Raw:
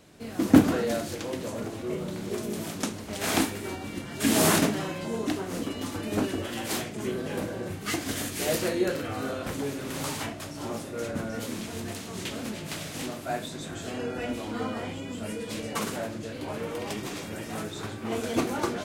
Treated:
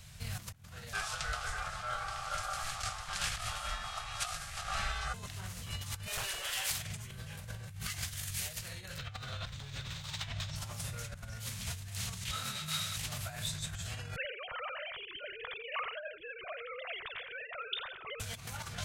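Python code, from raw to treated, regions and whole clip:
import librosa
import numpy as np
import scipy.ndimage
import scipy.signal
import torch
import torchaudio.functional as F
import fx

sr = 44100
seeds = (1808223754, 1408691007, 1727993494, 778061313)

y = fx.chain(x, sr, fx.bessel_lowpass(hz=7400.0, order=4),
    fx.ring_mod(carrier_hz=980.0), at=(0.93, 5.14))
y = fx.chain(y, sr, fx.highpass(hz=390.0, slope=24),
    fx.overload_stage(gain_db=31.5), at=(6.07, 6.71))
y = fx.chain(y, sr, fx.moving_average(points=4),
    fx.peak_eq(hz=3700.0, db=8.5, octaves=0.32),
    fx.overload_stage(gain_db=27.5), at=(8.98, 10.56))
y = fx.chain(y, sr, fx.highpass(hz=140.0, slope=12),
    fx.small_body(hz=(1300.0, 3800.0), ring_ms=30, db=15),
    fx.detune_double(cents=28), at=(12.31, 12.97))
y = fx.chain(y, sr, fx.sine_speech(),
    fx.notch(hz=830.0, q=8.5),
    fx.echo_single(ms=87, db=-15.5), at=(14.16, 18.2))
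y = fx.low_shelf_res(y, sr, hz=200.0, db=13.0, q=1.5)
y = fx.over_compress(y, sr, threshold_db=-32.0, ratio=-1.0)
y = fx.tone_stack(y, sr, knobs='10-0-10')
y = F.gain(torch.from_numpy(y), 1.5).numpy()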